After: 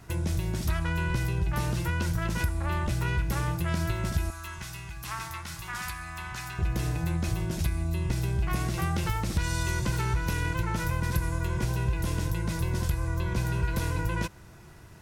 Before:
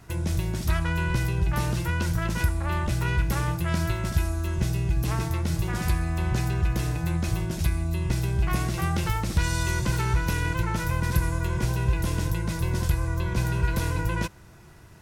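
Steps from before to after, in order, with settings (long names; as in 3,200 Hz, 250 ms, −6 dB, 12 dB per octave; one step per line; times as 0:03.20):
downward compressor 2 to 1, threshold −26 dBFS, peak gain reduction 5.5 dB
0:04.30–0:06.59: low shelf with overshoot 730 Hz −13.5 dB, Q 1.5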